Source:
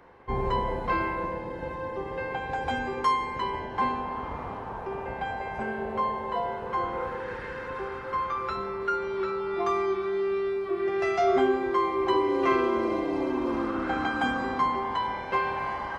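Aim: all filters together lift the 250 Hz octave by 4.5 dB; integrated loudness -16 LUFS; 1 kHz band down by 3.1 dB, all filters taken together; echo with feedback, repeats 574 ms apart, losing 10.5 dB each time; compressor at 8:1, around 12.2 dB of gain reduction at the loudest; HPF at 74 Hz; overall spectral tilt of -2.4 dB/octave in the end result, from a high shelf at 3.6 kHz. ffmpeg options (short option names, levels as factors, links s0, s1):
-af "highpass=74,equalizer=f=250:t=o:g=6.5,equalizer=f=1000:t=o:g=-3.5,highshelf=f=3600:g=-5.5,acompressor=threshold=0.0316:ratio=8,aecho=1:1:574|1148|1722:0.299|0.0896|0.0269,volume=7.94"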